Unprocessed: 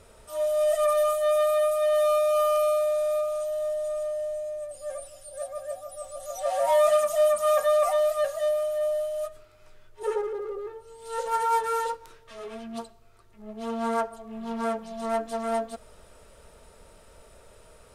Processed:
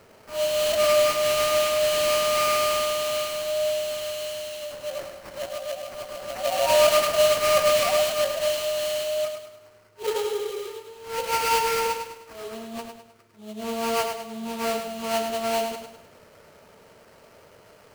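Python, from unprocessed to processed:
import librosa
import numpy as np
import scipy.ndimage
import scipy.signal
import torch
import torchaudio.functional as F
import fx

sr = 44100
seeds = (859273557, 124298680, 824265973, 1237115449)

y = scipy.signal.sosfilt(scipy.signal.butter(4, 100.0, 'highpass', fs=sr, output='sos'), x)
y = fx.sample_hold(y, sr, seeds[0], rate_hz=3600.0, jitter_pct=20)
y = fx.echo_feedback(y, sr, ms=103, feedback_pct=42, wet_db=-6.5)
y = y * 10.0 ** (1.5 / 20.0)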